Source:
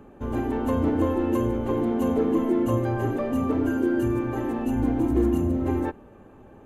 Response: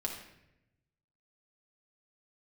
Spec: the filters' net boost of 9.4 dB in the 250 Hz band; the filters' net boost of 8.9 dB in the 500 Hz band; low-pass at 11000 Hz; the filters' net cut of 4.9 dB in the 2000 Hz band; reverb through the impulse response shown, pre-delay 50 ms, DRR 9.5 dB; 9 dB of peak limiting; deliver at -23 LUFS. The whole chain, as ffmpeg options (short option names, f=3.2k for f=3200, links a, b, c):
-filter_complex "[0:a]lowpass=11k,equalizer=f=250:t=o:g=8.5,equalizer=f=500:t=o:g=8.5,equalizer=f=2k:t=o:g=-8,alimiter=limit=-11.5dB:level=0:latency=1,asplit=2[a][b];[1:a]atrim=start_sample=2205,adelay=50[c];[b][c]afir=irnorm=-1:irlink=0,volume=-11.5dB[d];[a][d]amix=inputs=2:normalize=0,volume=-4.5dB"